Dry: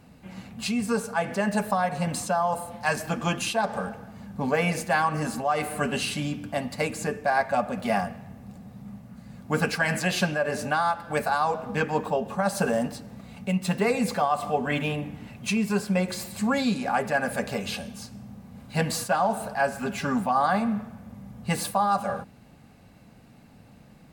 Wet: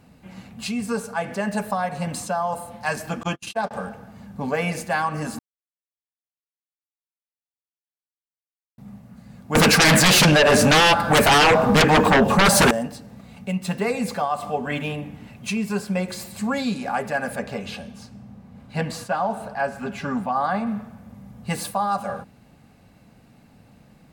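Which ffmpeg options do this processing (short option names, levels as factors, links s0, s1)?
-filter_complex "[0:a]asettb=1/sr,asplit=3[s0][s1][s2];[s0]atrim=end=3.234[s3];[s1]atrim=start=3.23:end=3.71,asetpts=PTS-STARTPTS,afade=t=in:d=0.004:c=qsin,afade=t=out:st=0.476:d=0.004:c=qsin,agate=range=0.00447:threshold=0.0355:ratio=16:release=100:detection=peak[s4];[s2]atrim=start=3.706[s5];[s3][s4]acrossfade=d=0.004:c1=hsin:c2=qsin[s6];[s6][s5]acrossfade=d=0.004:c1=qsin:c2=hsin,asettb=1/sr,asplit=3[s7][s8][s9];[s7]atrim=end=9.554[s10];[s8]atrim=start=9.55:end=12.71,asetpts=PTS-STARTPTS,afade=t=in:d=0.004:c=qsin,afade=t=out:st=3.156:d=0.004:c=qsin,aeval=exprs='0.282*sin(PI/2*5.01*val(0)/0.282)':c=same[s11];[s9]atrim=start=12.706[s12];[s10][s11]acrossfade=d=0.004:c1=hsin:c2=qsin[s13];[s13][s12]acrossfade=d=0.004:c1=qsin:c2=hsin,asettb=1/sr,asplit=3[s14][s15][s16];[s14]atrim=end=17.354[s17];[s15]atrim=start=17.35:end=20.67,asetpts=PTS-STARTPTS,afade=t=in:d=0.004:c=qsin,afade=t=out:st=3.316:d=0.004:c=qsin,lowpass=f=3600:p=1[s18];[s16]atrim=start=20.666[s19];[s17][s18]acrossfade=d=0.004:c1=hsin:c2=qsin[s20];[s20][s19]acrossfade=d=0.004:c1=qsin:c2=hsin,asplit=3[s21][s22][s23];[s21]atrim=end=5.39,asetpts=PTS-STARTPTS,afade=t=out:st=5.386:d=0.004:c=hsin[s24];[s22]atrim=start=5.39:end=8.78,asetpts=PTS-STARTPTS,volume=0[s25];[s23]atrim=start=8.78,asetpts=PTS-STARTPTS,afade=t=in:d=0.004:c=hsin[s26];[s24][s25][s26]concat=n=3:v=0:a=1"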